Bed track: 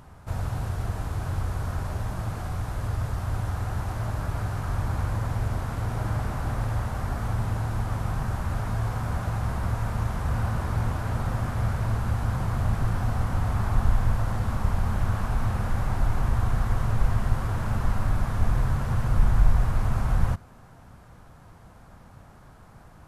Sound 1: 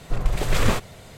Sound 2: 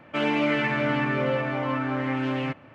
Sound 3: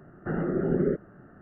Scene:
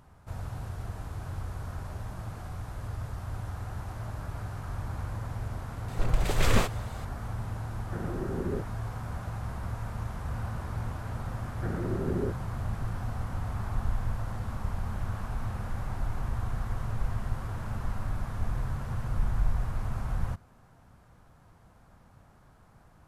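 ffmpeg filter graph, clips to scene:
-filter_complex "[3:a]asplit=2[a][b];[0:a]volume=-8dB[c];[1:a]atrim=end=1.17,asetpts=PTS-STARTPTS,volume=-3.5dB,afade=t=in:d=0.004:c=hsin,afade=t=out:st=1.166:d=0.004:c=hsin,adelay=5880[d];[a]atrim=end=1.41,asetpts=PTS-STARTPTS,volume=-8.5dB,afade=t=in:d=0.004:c=hsin,afade=t=out:st=1.406:d=0.004:c=hsin,adelay=7660[e];[b]atrim=end=1.41,asetpts=PTS-STARTPTS,volume=-6.5dB,afade=t=in:d=0.004:c=hsin,afade=t=out:st=1.406:d=0.004:c=hsin,adelay=11360[f];[c][d][e][f]amix=inputs=4:normalize=0"

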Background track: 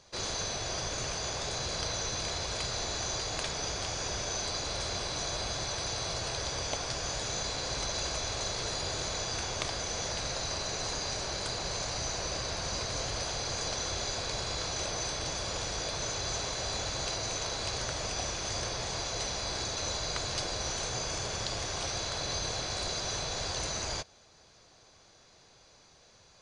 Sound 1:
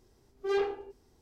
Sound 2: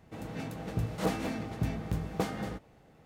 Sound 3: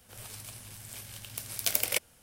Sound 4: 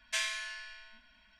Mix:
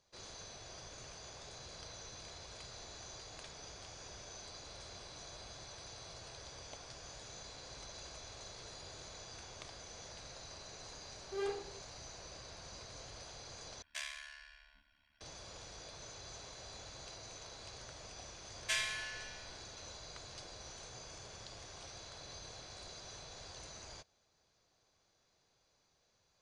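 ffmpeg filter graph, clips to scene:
-filter_complex "[4:a]asplit=2[a][b];[0:a]volume=-16.5dB[c];[a]aeval=exprs='val(0)*sin(2*PI*36*n/s)':c=same[d];[c]asplit=2[e][f];[e]atrim=end=13.824[g];[d]atrim=end=1.39,asetpts=PTS-STARTPTS,volume=-7.5dB[h];[f]atrim=start=15.206[i];[1:a]atrim=end=1.21,asetpts=PTS-STARTPTS,volume=-9.5dB,afade=t=in:d=0.004:c=hsin,afade=t=out:st=1.206:d=0.004:c=hsin,adelay=10880[j];[b]atrim=end=1.39,asetpts=PTS-STARTPTS,volume=-2dB,afade=t=in:d=0.004:c=hsin,afade=t=out:st=1.386:d=0.004:c=hsin,adelay=18560[k];[g][h]acrossfade=d=0.004:c1=hsin:c2=hsin[l];[l][i]acrossfade=d=0.004:c1=hsin:c2=hsin[m];[m][j][k]amix=inputs=3:normalize=0"

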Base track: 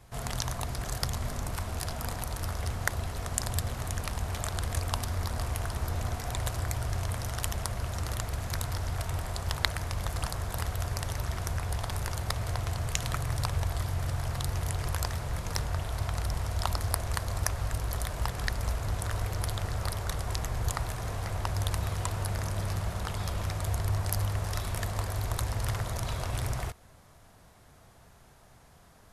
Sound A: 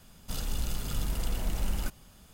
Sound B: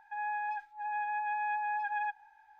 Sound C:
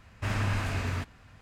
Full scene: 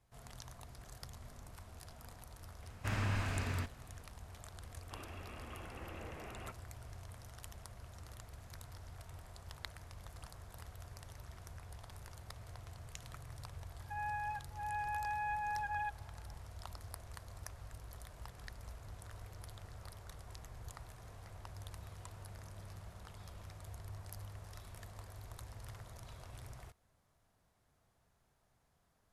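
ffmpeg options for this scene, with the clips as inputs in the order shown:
-filter_complex "[0:a]volume=-19dB[a];[1:a]highpass=f=340:t=q:w=0.5412,highpass=f=340:t=q:w=1.307,lowpass=f=2.8k:t=q:w=0.5176,lowpass=f=2.8k:t=q:w=0.7071,lowpass=f=2.8k:t=q:w=1.932,afreqshift=-160[b];[3:a]atrim=end=1.41,asetpts=PTS-STARTPTS,volume=-6.5dB,afade=t=in:d=0.004:c=hsin,afade=t=out:st=1.406:d=0.004:c=hsin,adelay=2620[c];[b]atrim=end=2.33,asetpts=PTS-STARTPTS,volume=-5dB,afade=t=in:d=0.004:c=hsin,afade=t=out:st=2.326:d=0.004:c=hsin,adelay=4620[d];[2:a]atrim=end=2.59,asetpts=PTS-STARTPTS,volume=-5dB,afade=t=in:d=0.004:c=hsin,afade=t=out:st=2.586:d=0.004:c=hsin,adelay=13790[e];[a][c][d][e]amix=inputs=4:normalize=0"

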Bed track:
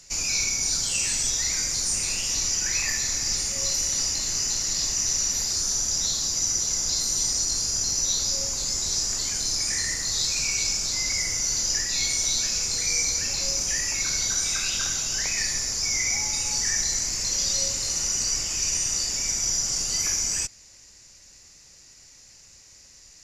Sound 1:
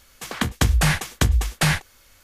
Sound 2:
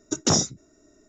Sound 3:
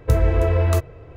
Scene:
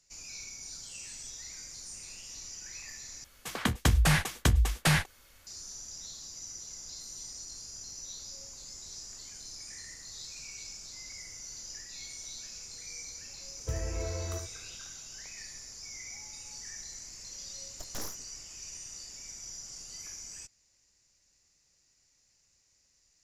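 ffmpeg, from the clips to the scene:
-filter_complex "[0:a]volume=-19dB[a];[1:a]acontrast=26[b];[3:a]aecho=1:1:73:0.398[c];[2:a]aeval=exprs='abs(val(0))':c=same[d];[a]asplit=2[e][f];[e]atrim=end=3.244[g];[b]atrim=end=2.23,asetpts=PTS-STARTPTS,volume=-10dB[h];[f]atrim=start=5.466[i];[c]atrim=end=1.16,asetpts=PTS-STARTPTS,volume=-17.5dB,afade=t=in:d=0.004:c=hsin,afade=t=out:st=1.156:d=0.004:c=hsin,adelay=13590[j];[d]atrim=end=1.08,asetpts=PTS-STARTPTS,volume=-16.5dB,afade=t=in:d=0.004:c=hsin,afade=t=out:st=1.076:d=0.004:c=hsin,adelay=17680[k];[g][h]acrossfade=d=0.004:c1=hsin:c2=hsin[l];[l][i]acrossfade=d=0.004:c1=hsin:c2=hsin[m];[m][j][k]amix=inputs=3:normalize=0"

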